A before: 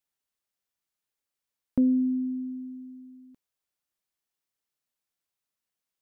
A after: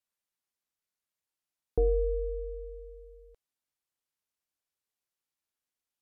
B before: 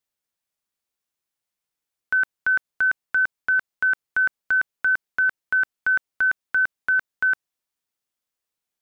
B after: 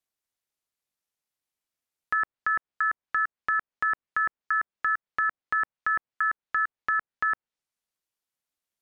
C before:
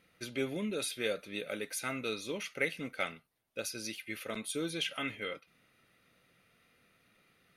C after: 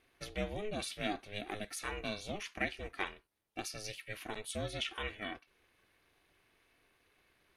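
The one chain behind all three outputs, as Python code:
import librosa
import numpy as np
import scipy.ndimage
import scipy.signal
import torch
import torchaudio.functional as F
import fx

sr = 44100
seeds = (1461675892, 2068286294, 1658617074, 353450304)

y = fx.env_lowpass_down(x, sr, base_hz=1600.0, full_db=-20.5)
y = y * np.sin(2.0 * np.pi * 210.0 * np.arange(len(y)) / sr)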